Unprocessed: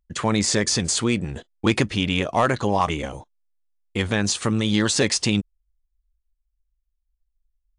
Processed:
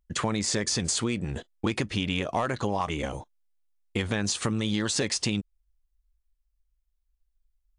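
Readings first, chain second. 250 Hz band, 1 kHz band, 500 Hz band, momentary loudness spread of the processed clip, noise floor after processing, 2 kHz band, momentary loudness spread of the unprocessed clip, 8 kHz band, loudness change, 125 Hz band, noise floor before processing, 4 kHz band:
−6.5 dB, −7.0 dB, −7.0 dB, 7 LU, −75 dBFS, −6.5 dB, 10 LU, −5.0 dB, −6.5 dB, −6.0 dB, −75 dBFS, −5.5 dB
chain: downward compressor, threshold −24 dBFS, peak gain reduction 10 dB

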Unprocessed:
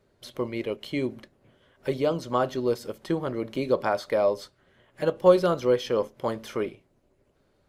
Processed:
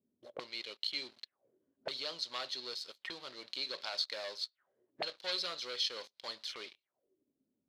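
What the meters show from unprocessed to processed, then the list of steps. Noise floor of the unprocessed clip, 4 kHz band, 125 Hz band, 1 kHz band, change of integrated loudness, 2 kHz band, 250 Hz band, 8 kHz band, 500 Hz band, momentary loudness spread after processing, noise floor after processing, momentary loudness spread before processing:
−67 dBFS, +5.0 dB, below −30 dB, −17.0 dB, −12.5 dB, −7.0 dB, −27.0 dB, can't be measured, −23.5 dB, 12 LU, below −85 dBFS, 11 LU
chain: leveller curve on the samples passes 3
envelope filter 240–4,200 Hz, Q 5.6, up, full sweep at −22.5 dBFS
level +1 dB

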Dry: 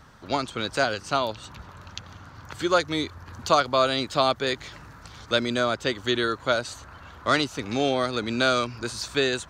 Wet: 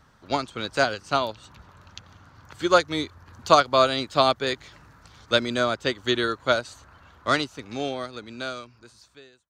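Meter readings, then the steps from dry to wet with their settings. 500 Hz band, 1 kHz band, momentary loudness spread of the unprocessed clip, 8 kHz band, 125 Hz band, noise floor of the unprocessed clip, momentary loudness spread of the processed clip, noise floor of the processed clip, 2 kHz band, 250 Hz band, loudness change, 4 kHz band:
+0.5 dB, +1.5 dB, 19 LU, −2.5 dB, −2.0 dB, −48 dBFS, 14 LU, −57 dBFS, −0.5 dB, −1.5 dB, +1.0 dB, −0.5 dB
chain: fade-out on the ending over 2.67 s
expander for the loud parts 1.5 to 1, over −37 dBFS
level +4.5 dB

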